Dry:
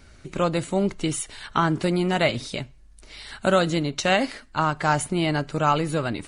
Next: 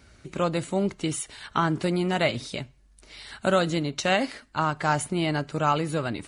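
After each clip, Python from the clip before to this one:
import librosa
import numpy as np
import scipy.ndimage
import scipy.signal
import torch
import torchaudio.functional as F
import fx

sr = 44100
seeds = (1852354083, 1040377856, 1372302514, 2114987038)

y = scipy.signal.sosfilt(scipy.signal.butter(2, 47.0, 'highpass', fs=sr, output='sos'), x)
y = F.gain(torch.from_numpy(y), -2.5).numpy()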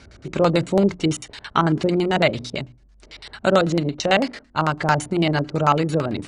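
y = fx.hum_notches(x, sr, base_hz=60, count=5)
y = fx.filter_lfo_lowpass(y, sr, shape='square', hz=9.0, low_hz=530.0, high_hz=5900.0, q=0.97)
y = fx.rider(y, sr, range_db=4, speed_s=2.0)
y = F.gain(torch.from_numpy(y), 6.0).numpy()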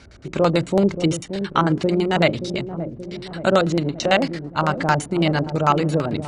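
y = fx.echo_wet_lowpass(x, sr, ms=577, feedback_pct=57, hz=530.0, wet_db=-8.5)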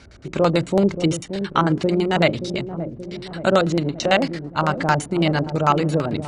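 y = x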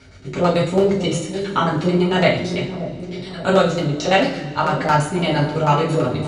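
y = fx.rev_double_slope(x, sr, seeds[0], early_s=0.41, late_s=2.3, knee_db=-18, drr_db=-5.5)
y = F.gain(torch.from_numpy(y), -4.5).numpy()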